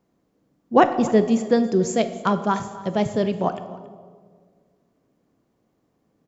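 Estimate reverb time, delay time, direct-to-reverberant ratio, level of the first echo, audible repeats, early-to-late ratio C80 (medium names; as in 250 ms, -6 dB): 1.7 s, 277 ms, 9.5 dB, -19.0 dB, 1, 12.5 dB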